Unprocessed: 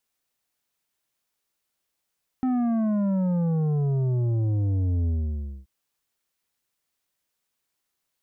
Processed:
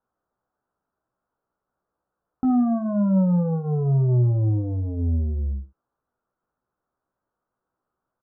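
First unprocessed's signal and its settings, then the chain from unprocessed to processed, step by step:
sub drop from 260 Hz, over 3.23 s, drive 8.5 dB, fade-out 0.59 s, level -22 dB
elliptic low-pass 1400 Hz, stop band 50 dB; in parallel at +1.5 dB: limiter -33 dBFS; on the sum: early reflections 16 ms -6 dB, 73 ms -12.5 dB

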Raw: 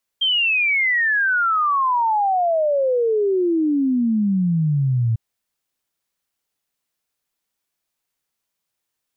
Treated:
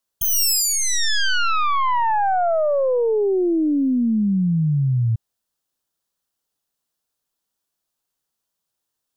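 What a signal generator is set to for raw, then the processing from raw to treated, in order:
log sweep 3200 Hz -> 110 Hz 4.95 s -15.5 dBFS
tracing distortion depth 0.33 ms; bell 2200 Hz -9 dB 0.58 oct

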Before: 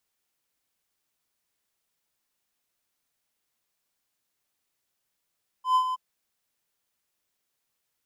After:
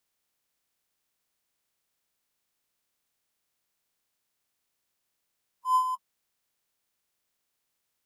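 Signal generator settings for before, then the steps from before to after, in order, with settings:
ADSR triangle 1020 Hz, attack 0.114 s, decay 81 ms, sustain -9 dB, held 0.30 s, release 23 ms -15 dBFS
bin magnitudes rounded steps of 30 dB

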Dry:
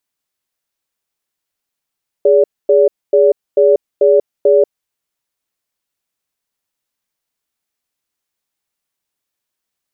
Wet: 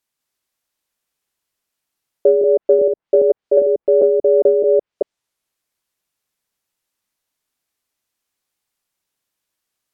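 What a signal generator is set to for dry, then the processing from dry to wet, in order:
cadence 413 Hz, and 574 Hz, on 0.19 s, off 0.25 s, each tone -9 dBFS 2.40 s
reverse delay 0.201 s, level -2.5 dB; treble ducked by the level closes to 370 Hz, closed at -6 dBFS

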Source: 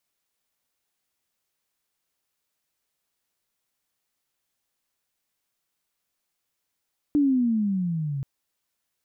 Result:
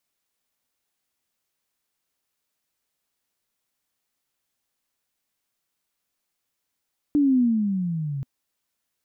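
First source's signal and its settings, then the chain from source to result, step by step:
gliding synth tone sine, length 1.08 s, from 299 Hz, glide -14 st, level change -10 dB, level -16.5 dB
bell 250 Hz +3 dB 0.32 oct

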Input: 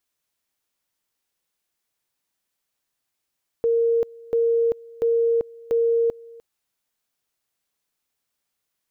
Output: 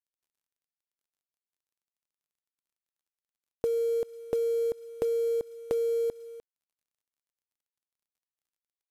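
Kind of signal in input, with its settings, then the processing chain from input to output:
two-level tone 463 Hz -16.5 dBFS, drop 23.5 dB, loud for 0.39 s, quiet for 0.30 s, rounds 4
compressor 8:1, threshold -26 dBFS; companded quantiser 6-bit; downsampling 32000 Hz

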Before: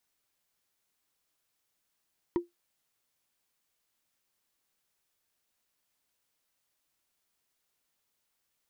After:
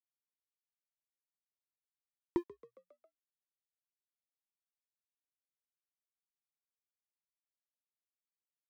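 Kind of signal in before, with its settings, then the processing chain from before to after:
wood hit, lowest mode 347 Hz, decay 0.16 s, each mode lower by 9.5 dB, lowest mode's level -20.5 dB
crossover distortion -50 dBFS; frequency-shifting echo 0.136 s, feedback 63%, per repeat +60 Hz, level -21 dB

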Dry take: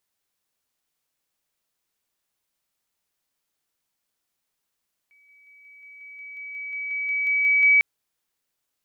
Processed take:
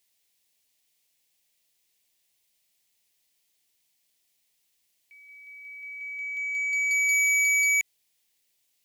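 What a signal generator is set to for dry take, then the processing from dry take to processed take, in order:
level ladder 2280 Hz -55 dBFS, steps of 3 dB, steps 15, 0.18 s 0.00 s
EQ curve 730 Hz 0 dB, 1400 Hz -8 dB, 2000 Hz +6 dB, 3000 Hz +8 dB; limiter -16 dBFS; core saturation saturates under 3800 Hz

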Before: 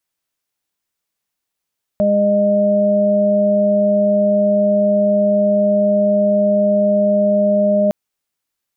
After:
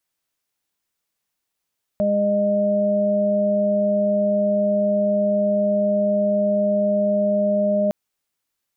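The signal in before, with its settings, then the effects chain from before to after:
steady additive tone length 5.91 s, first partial 204 Hz, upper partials -16/4 dB, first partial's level -16.5 dB
limiter -14.5 dBFS

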